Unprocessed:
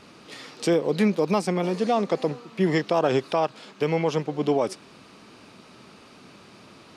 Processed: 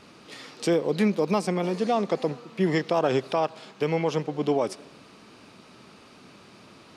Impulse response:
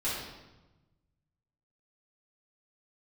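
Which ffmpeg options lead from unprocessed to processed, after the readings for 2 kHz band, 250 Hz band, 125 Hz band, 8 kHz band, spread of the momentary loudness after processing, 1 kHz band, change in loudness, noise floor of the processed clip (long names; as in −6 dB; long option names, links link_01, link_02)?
−1.5 dB, −1.5 dB, −1.5 dB, −1.5 dB, 8 LU, −1.5 dB, −1.5 dB, −52 dBFS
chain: -filter_complex "[0:a]asplit=2[link_01][link_02];[1:a]atrim=start_sample=2205,adelay=68[link_03];[link_02][link_03]afir=irnorm=-1:irlink=0,volume=-31dB[link_04];[link_01][link_04]amix=inputs=2:normalize=0,volume=-1.5dB"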